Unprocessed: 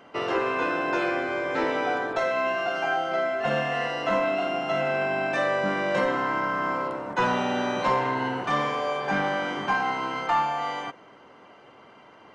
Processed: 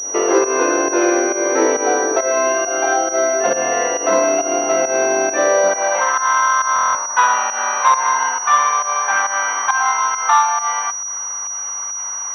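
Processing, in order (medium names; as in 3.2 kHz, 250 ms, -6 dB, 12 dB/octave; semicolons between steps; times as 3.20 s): high-pass sweep 370 Hz -> 1.1 kHz, 5.43–6.12 s; in parallel at +2 dB: compression, threshold -39 dBFS, peak gain reduction 21.5 dB; on the sum: spectral replace 5.69–5.98 s, 930–2100 Hz before; volume shaper 136 bpm, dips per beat 1, -14 dB, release 147 ms; buffer glitch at 6.74 s, samples 1024, times 8; class-D stage that switches slowly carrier 5.8 kHz; trim +5.5 dB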